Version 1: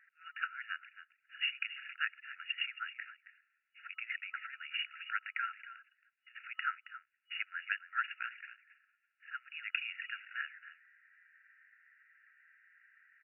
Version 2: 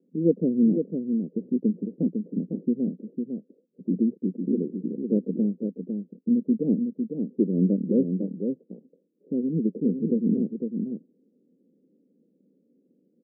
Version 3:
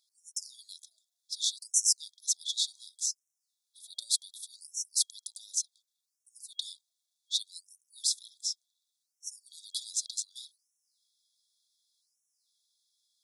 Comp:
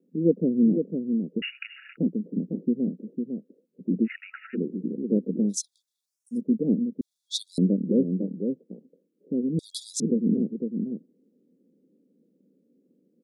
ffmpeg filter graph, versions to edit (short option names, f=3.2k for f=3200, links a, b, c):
-filter_complex "[0:a]asplit=2[a][b];[2:a]asplit=3[c][d][e];[1:a]asplit=6[f][g][h][i][j][k];[f]atrim=end=1.422[l];[a]atrim=start=1.418:end=1.972[m];[g]atrim=start=1.968:end=4.08[n];[b]atrim=start=4.04:end=4.57[o];[h]atrim=start=4.53:end=5.58[p];[c]atrim=start=5.48:end=6.41[q];[i]atrim=start=6.31:end=7.012[r];[d]atrim=start=7.008:end=7.582[s];[j]atrim=start=7.578:end=9.592[t];[e]atrim=start=9.588:end=10.002[u];[k]atrim=start=9.998[v];[l][m]acrossfade=d=0.004:c1=hsin:c2=hsin[w];[w][n]acrossfade=d=0.004:c1=hsin:c2=hsin[x];[x][o]acrossfade=d=0.04:c1=tri:c2=tri[y];[y][p]acrossfade=d=0.04:c1=tri:c2=tri[z];[z][q]acrossfade=d=0.1:c1=tri:c2=tri[aa];[aa][r]acrossfade=d=0.1:c1=tri:c2=tri[ab];[ab][s]acrossfade=d=0.004:c1=hsin:c2=hsin[ac];[ac][t]acrossfade=d=0.004:c1=hsin:c2=hsin[ad];[ad][u]acrossfade=d=0.004:c1=hsin:c2=hsin[ae];[ae][v]acrossfade=d=0.004:c1=hsin:c2=hsin"